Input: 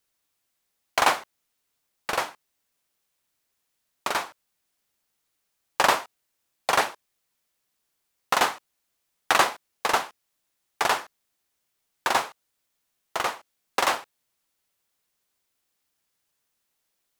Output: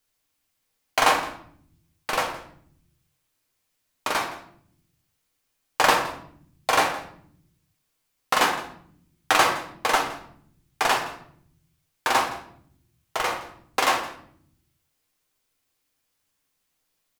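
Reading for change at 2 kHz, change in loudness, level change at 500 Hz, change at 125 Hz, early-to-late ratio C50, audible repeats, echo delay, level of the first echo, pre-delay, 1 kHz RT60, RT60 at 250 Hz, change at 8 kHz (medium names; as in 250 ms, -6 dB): +2.0 dB, +1.5 dB, +2.0 dB, +5.5 dB, 8.0 dB, 1, 166 ms, -18.0 dB, 3 ms, 0.60 s, 1.3 s, +1.5 dB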